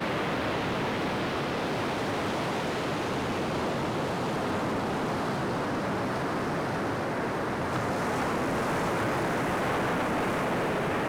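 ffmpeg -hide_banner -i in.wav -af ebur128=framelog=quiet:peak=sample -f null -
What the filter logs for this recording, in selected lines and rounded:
Integrated loudness:
  I:         -29.3 LUFS
  Threshold: -39.3 LUFS
Loudness range:
  LRA:         1.6 LU
  Threshold: -49.5 LUFS
  LRA low:   -29.9 LUFS
  LRA high:  -28.3 LUFS
Sample peak:
  Peak:      -21.5 dBFS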